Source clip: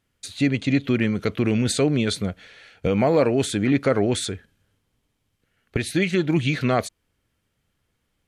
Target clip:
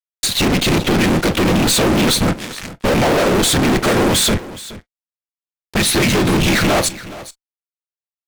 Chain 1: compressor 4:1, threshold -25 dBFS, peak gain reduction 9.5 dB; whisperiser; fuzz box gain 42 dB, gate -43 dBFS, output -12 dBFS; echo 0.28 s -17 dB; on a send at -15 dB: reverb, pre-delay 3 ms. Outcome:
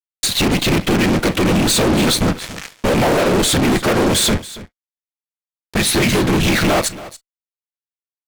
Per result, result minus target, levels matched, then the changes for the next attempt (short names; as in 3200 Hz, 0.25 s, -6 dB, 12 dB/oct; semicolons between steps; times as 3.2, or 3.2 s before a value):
echo 0.141 s early; compressor: peak gain reduction +5 dB
change: echo 0.421 s -17 dB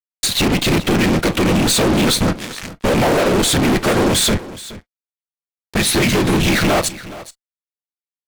compressor: peak gain reduction +5 dB
change: compressor 4:1, threshold -18.5 dBFS, peak gain reduction 4.5 dB